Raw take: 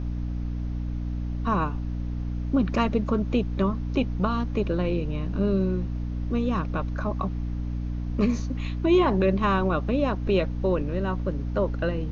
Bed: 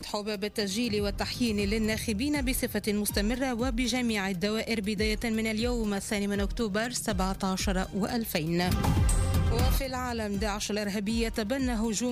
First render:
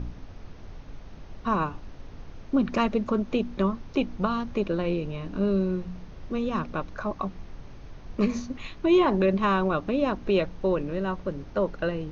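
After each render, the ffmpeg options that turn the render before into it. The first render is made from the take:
-af "bandreject=f=60:t=h:w=4,bandreject=f=120:t=h:w=4,bandreject=f=180:t=h:w=4,bandreject=f=240:t=h:w=4,bandreject=f=300:t=h:w=4"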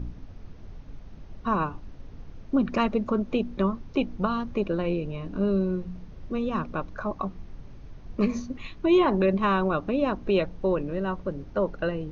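-af "afftdn=nr=6:nf=-44"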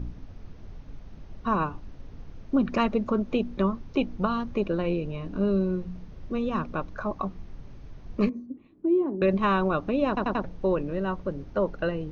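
-filter_complex "[0:a]asettb=1/sr,asplit=3[s0][s1][s2];[s0]atrim=end=8.294[s3];[s1]atrim=start=8.29:end=9.22,asetpts=PTS-STARTPTS,afade=t=in:d=0.004:c=qsin,afade=t=out:st=0.926:d=0.004:c=qsin,bandpass=f=300:t=q:w=3[s4];[s2]atrim=start=9.216[s5];[s3][s4]acrossfade=d=0.004:c1=hsin:c2=qsin[s6];[s6][s5]acrossfade=d=0.004:c1=qsin:c2=hsin,asplit=5[s7][s8][s9][s10][s11];[s7]atrim=end=10.172[s12];[s8]atrim=start=10.078:end=10.172[s13];[s9]atrim=start=10.078:end=10.172[s14];[s10]atrim=start=10.078:end=10.172[s15];[s11]atrim=start=10.438[s16];[s12][s13]acrossfade=d=0.004:c1=hsin:c2=hsin[s17];[s17][s14]acrossfade=d=0.004:c1=hsin:c2=hsin[s18];[s18][s15]acrossfade=d=0.004:c1=hsin:c2=hsin[s19];[s19][s16]acrossfade=d=0.004:c1=hsin:c2=hsin"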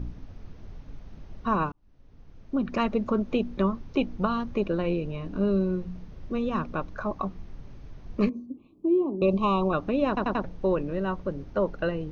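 -filter_complex "[0:a]asettb=1/sr,asplit=3[s0][s1][s2];[s0]atrim=end=8.314[s3];[s1]atrim=start=8.31:end=9.73,asetpts=PTS-STARTPTS,afade=t=in:d=0.004:c=qsin,afade=t=out:st=1.416:d=0.004:c=qsin,asuperstop=centerf=1700:order=8:qfactor=1.5[s4];[s2]atrim=start=9.726[s5];[s3][s4]acrossfade=d=0.004:c1=hsin:c2=qsin[s6];[s6][s5]acrossfade=d=0.004:c1=qsin:c2=hsin,asplit=2[s7][s8];[s7]atrim=end=1.72,asetpts=PTS-STARTPTS,afade=t=out:st=1.716:d=0.004:c=hsin[s9];[s8]atrim=start=1.72,asetpts=PTS-STARTPTS,afade=t=in:d=1.34[s10];[s9][s10]concat=n=2:v=0:a=1"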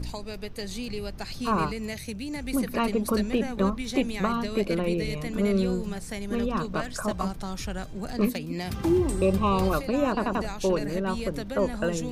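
-filter_complex "[1:a]volume=0.531[s0];[0:a][s0]amix=inputs=2:normalize=0"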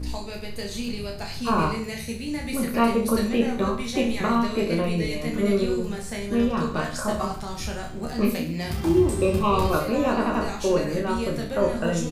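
-filter_complex "[0:a]asplit=2[s0][s1];[s1]adelay=13,volume=0.562[s2];[s0][s2]amix=inputs=2:normalize=0,asplit=2[s3][s4];[s4]aecho=0:1:30|63|99.3|139.2|183.2:0.631|0.398|0.251|0.158|0.1[s5];[s3][s5]amix=inputs=2:normalize=0"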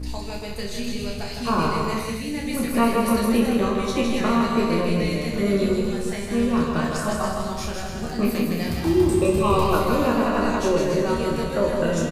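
-af "aecho=1:1:160|280|370|437.5|488.1:0.631|0.398|0.251|0.158|0.1"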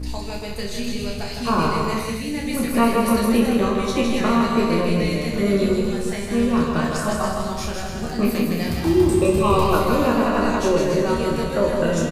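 -af "volume=1.26"

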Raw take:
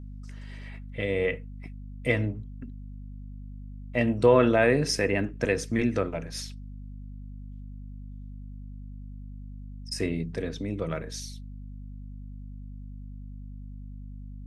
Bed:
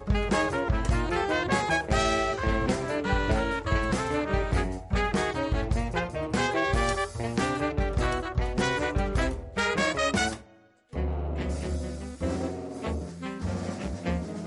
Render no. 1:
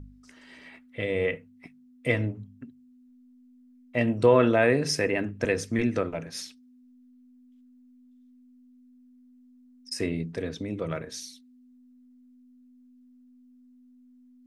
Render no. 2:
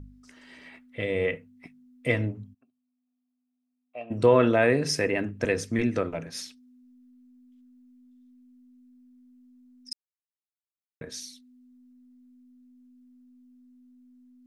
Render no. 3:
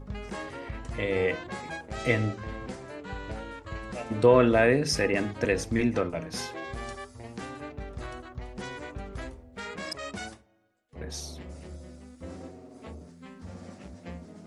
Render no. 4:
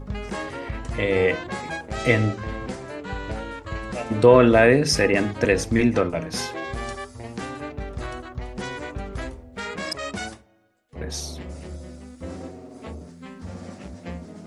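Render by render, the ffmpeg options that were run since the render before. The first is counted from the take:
-af "bandreject=f=50:t=h:w=4,bandreject=f=100:t=h:w=4,bandreject=f=150:t=h:w=4,bandreject=f=200:t=h:w=4"
-filter_complex "[0:a]asplit=3[s0][s1][s2];[s0]afade=t=out:st=2.53:d=0.02[s3];[s1]asplit=3[s4][s5][s6];[s4]bandpass=f=730:t=q:w=8,volume=1[s7];[s5]bandpass=f=1090:t=q:w=8,volume=0.501[s8];[s6]bandpass=f=2440:t=q:w=8,volume=0.355[s9];[s7][s8][s9]amix=inputs=3:normalize=0,afade=t=in:st=2.53:d=0.02,afade=t=out:st=4.1:d=0.02[s10];[s2]afade=t=in:st=4.1:d=0.02[s11];[s3][s10][s11]amix=inputs=3:normalize=0,asplit=3[s12][s13][s14];[s12]atrim=end=9.93,asetpts=PTS-STARTPTS,afade=t=out:st=9.926:d=0.004:c=hsin[s15];[s13]atrim=start=9.93:end=11.01,asetpts=PTS-STARTPTS,volume=0[s16];[s14]atrim=start=11.01,asetpts=PTS-STARTPTS,afade=t=in:d=0.004:c=hsin[s17];[s15][s16][s17]concat=n=3:v=0:a=1"
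-filter_complex "[1:a]volume=0.251[s0];[0:a][s0]amix=inputs=2:normalize=0"
-af "volume=2.11,alimiter=limit=0.708:level=0:latency=1"

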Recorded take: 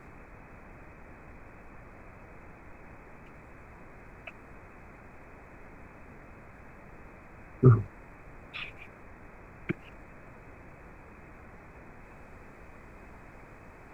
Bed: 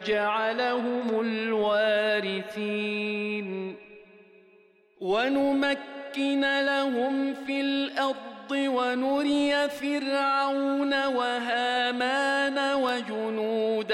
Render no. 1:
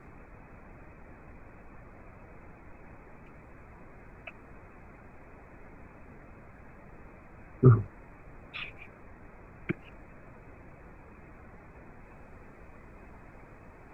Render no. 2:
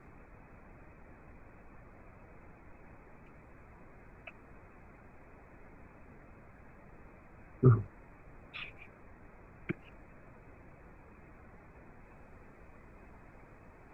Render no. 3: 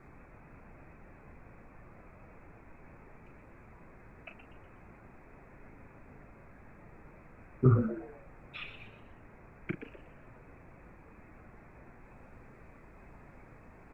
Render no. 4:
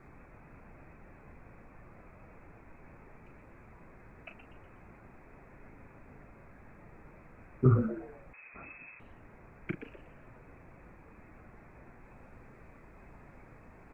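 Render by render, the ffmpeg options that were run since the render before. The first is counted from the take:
-af "afftdn=nr=6:nf=-52"
-af "volume=0.596"
-filter_complex "[0:a]asplit=2[s0][s1];[s1]adelay=36,volume=0.355[s2];[s0][s2]amix=inputs=2:normalize=0,asplit=5[s3][s4][s5][s6][s7];[s4]adelay=122,afreqshift=110,volume=0.316[s8];[s5]adelay=244,afreqshift=220,volume=0.111[s9];[s6]adelay=366,afreqshift=330,volume=0.0389[s10];[s7]adelay=488,afreqshift=440,volume=0.0135[s11];[s3][s8][s9][s10][s11]amix=inputs=5:normalize=0"
-filter_complex "[0:a]asettb=1/sr,asplit=3[s0][s1][s2];[s0]atrim=end=8.334[s3];[s1]atrim=start=8.33:end=9,asetpts=PTS-STARTPTS,afade=t=in:d=0.004:c=qsin,afade=t=out:st=0.666:d=0.004:c=qsin,lowpass=f=2200:t=q:w=0.5098,lowpass=f=2200:t=q:w=0.6013,lowpass=f=2200:t=q:w=0.9,lowpass=f=2200:t=q:w=2.563,afreqshift=-2600[s4];[s2]atrim=start=8.996[s5];[s3][s4]acrossfade=d=0.004:c1=hsin:c2=qsin[s6];[s6][s5]acrossfade=d=0.004:c1=qsin:c2=hsin"

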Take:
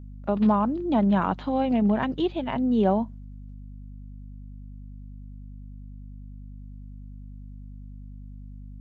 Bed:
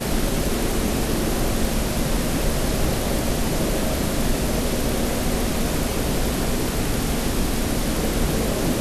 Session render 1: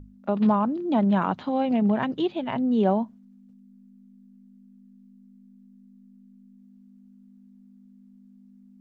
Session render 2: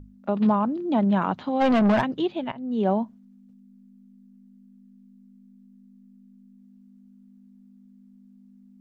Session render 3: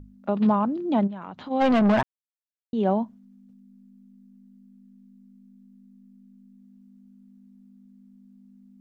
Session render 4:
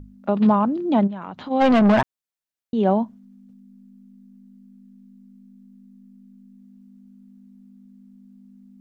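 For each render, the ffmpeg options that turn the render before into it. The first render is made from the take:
-af "bandreject=f=50:t=h:w=6,bandreject=f=100:t=h:w=6,bandreject=f=150:t=h:w=6"
-filter_complex "[0:a]asplit=3[s0][s1][s2];[s0]afade=t=out:st=1.6:d=0.02[s3];[s1]asplit=2[s4][s5];[s5]highpass=f=720:p=1,volume=17.8,asoftclip=type=tanh:threshold=0.251[s6];[s4][s6]amix=inputs=2:normalize=0,lowpass=f=2700:p=1,volume=0.501,afade=t=in:st=1.6:d=0.02,afade=t=out:st=2:d=0.02[s7];[s2]afade=t=in:st=2:d=0.02[s8];[s3][s7][s8]amix=inputs=3:normalize=0,asplit=2[s9][s10];[s9]atrim=end=2.52,asetpts=PTS-STARTPTS,afade=t=out:st=2.516:d=0.004:c=hsin:silence=0.125893[s11];[s10]atrim=start=2.52,asetpts=PTS-STARTPTS,afade=t=in:d=0.41:silence=0.125893[s12];[s11][s12]concat=n=2:v=0:a=1"
-filter_complex "[0:a]asplit=3[s0][s1][s2];[s0]afade=t=out:st=1.06:d=0.02[s3];[s1]acompressor=threshold=0.02:ratio=5:attack=3.2:release=140:knee=1:detection=peak,afade=t=in:st=1.06:d=0.02,afade=t=out:st=1.5:d=0.02[s4];[s2]afade=t=in:st=1.5:d=0.02[s5];[s3][s4][s5]amix=inputs=3:normalize=0,asplit=3[s6][s7][s8];[s6]atrim=end=2.03,asetpts=PTS-STARTPTS,afade=t=out:st=2.026:d=0.004:c=hsin[s9];[s7]atrim=start=2.03:end=2.73,asetpts=PTS-STARTPTS,volume=0[s10];[s8]atrim=start=2.73,asetpts=PTS-STARTPTS,afade=t=in:d=0.004:c=hsin[s11];[s9][s10][s11]concat=n=3:v=0:a=1"
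-af "volume=1.58"

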